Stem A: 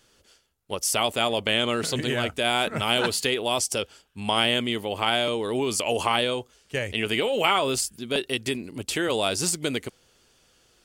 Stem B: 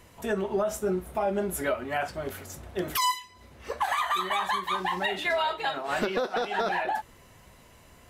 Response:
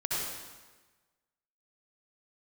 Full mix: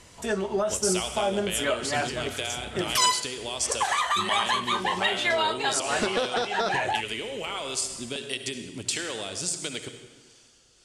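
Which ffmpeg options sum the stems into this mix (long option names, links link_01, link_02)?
-filter_complex "[0:a]acompressor=threshold=-30dB:ratio=6,acrossover=split=450[link_01][link_02];[link_01]aeval=exprs='val(0)*(1-0.5/2+0.5/2*cos(2*PI*1.5*n/s))':channel_layout=same[link_03];[link_02]aeval=exprs='val(0)*(1-0.5/2-0.5/2*cos(2*PI*1.5*n/s))':channel_layout=same[link_04];[link_03][link_04]amix=inputs=2:normalize=0,volume=-2dB,asplit=2[link_05][link_06];[link_06]volume=-11.5dB[link_07];[1:a]volume=0.5dB[link_08];[2:a]atrim=start_sample=2205[link_09];[link_07][link_09]afir=irnorm=-1:irlink=0[link_10];[link_05][link_08][link_10]amix=inputs=3:normalize=0,lowpass=frequency=8800:width=0.5412,lowpass=frequency=8800:width=1.3066,highshelf=frequency=4000:gain=12"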